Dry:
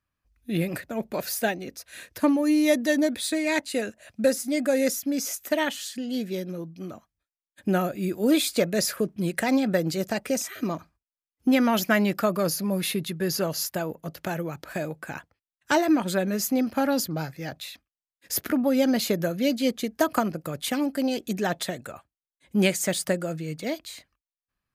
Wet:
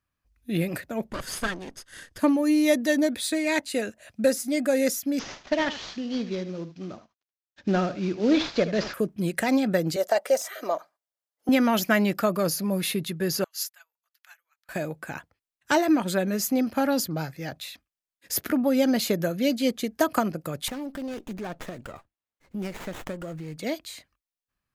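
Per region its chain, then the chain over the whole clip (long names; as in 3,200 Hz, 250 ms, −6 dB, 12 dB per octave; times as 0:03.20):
0:01.09–0:02.19: lower of the sound and its delayed copy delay 0.62 ms + low-pass filter 11,000 Hz 24 dB per octave
0:05.19–0:08.94: variable-slope delta modulation 32 kbit/s + single-tap delay 76 ms −13 dB
0:09.96–0:11.49: de-essing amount 55% + high-pass with resonance 600 Hz, resonance Q 3 + notch filter 2,500 Hz, Q 8.1
0:13.44–0:14.69: high-pass filter 1,300 Hz 24 dB per octave + expander for the loud parts 2.5 to 1, over −47 dBFS
0:20.68–0:23.57: downward compressor 2.5 to 1, threshold −34 dBFS + windowed peak hold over 9 samples
whole clip: no processing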